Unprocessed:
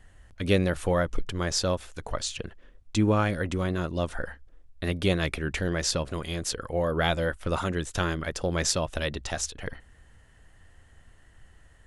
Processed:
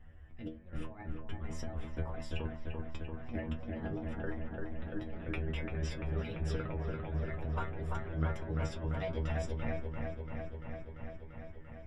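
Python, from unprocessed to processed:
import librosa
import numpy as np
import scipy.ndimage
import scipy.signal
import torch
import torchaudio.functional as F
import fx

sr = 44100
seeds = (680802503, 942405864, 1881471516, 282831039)

y = fx.pitch_trill(x, sr, semitones=3.0, every_ms=288)
y = fx.low_shelf(y, sr, hz=430.0, db=9.0)
y = fx.over_compress(y, sr, threshold_db=-27.0, ratio=-0.5)
y = scipy.signal.savgol_filter(y, 25, 4, mode='constant')
y = fx.stiff_resonator(y, sr, f0_hz=77.0, decay_s=0.32, stiffness=0.002)
y = fx.echo_wet_lowpass(y, sr, ms=342, feedback_pct=77, hz=2000.0, wet_db=-3)
y = y * 10.0 ** (-3.5 / 20.0)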